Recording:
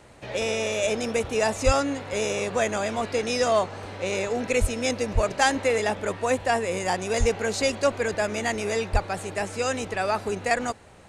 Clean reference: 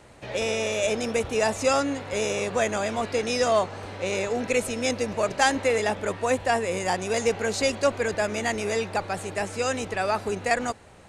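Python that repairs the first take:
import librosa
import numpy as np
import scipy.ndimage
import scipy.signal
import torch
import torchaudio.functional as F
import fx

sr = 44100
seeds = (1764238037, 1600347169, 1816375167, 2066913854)

y = fx.fix_deplosive(x, sr, at_s=(1.65, 4.6, 5.14, 7.19, 8.92))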